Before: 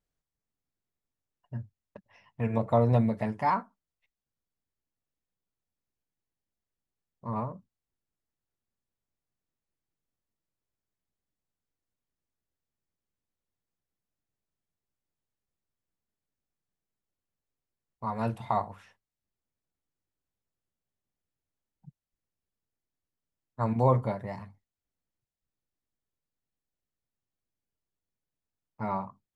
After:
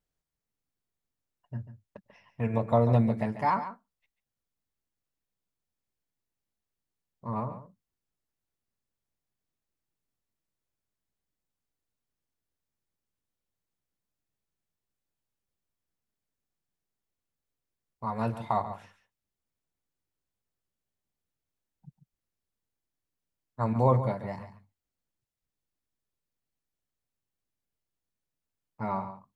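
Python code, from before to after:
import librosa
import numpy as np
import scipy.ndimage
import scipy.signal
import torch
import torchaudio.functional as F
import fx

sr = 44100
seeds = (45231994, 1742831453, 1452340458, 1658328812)

y = x + 10.0 ** (-12.0 / 20.0) * np.pad(x, (int(141 * sr / 1000.0), 0))[:len(x)]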